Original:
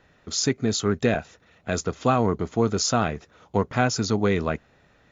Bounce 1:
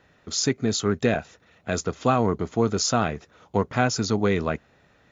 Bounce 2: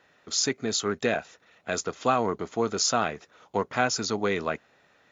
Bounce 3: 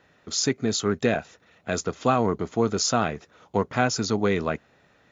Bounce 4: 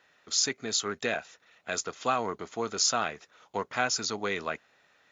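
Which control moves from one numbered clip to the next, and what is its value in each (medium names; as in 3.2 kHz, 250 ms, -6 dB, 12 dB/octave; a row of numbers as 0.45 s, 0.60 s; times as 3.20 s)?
high-pass, cutoff frequency: 47 Hz, 490 Hz, 140 Hz, 1.3 kHz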